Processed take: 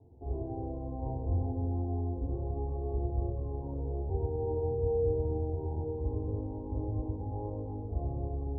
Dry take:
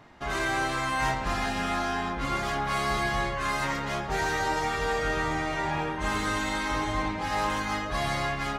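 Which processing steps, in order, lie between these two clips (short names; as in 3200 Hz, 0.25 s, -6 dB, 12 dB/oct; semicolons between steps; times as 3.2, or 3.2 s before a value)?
steep low-pass 580 Hz 36 dB/oct; reverb RT60 0.65 s, pre-delay 3 ms, DRR 5.5 dB; gain -6.5 dB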